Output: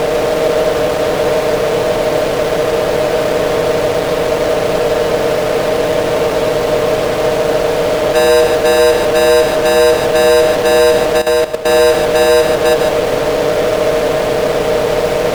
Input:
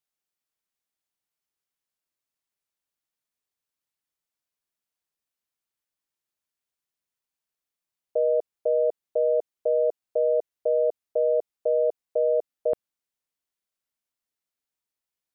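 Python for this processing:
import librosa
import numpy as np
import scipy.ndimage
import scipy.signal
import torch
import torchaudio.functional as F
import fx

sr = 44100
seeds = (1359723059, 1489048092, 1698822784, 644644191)

p1 = fx.bin_compress(x, sr, power=0.4)
p2 = fx.over_compress(p1, sr, threshold_db=-32.0, ratio=-1.0)
p3 = p1 + F.gain(torch.from_numpy(p2), -2.0).numpy()
p4 = fx.fuzz(p3, sr, gain_db=46.0, gate_db=-53.0)
p5 = p4 + 0.35 * np.pad(p4, (int(6.6 * sr / 1000.0), 0))[:len(p4)]
p6 = p5 + fx.echo_single(p5, sr, ms=148, db=-6.0, dry=0)
p7 = fx.level_steps(p6, sr, step_db=13, at=(11.17, 11.69), fade=0.02)
y = F.gain(torch.from_numpy(p7), 2.5).numpy()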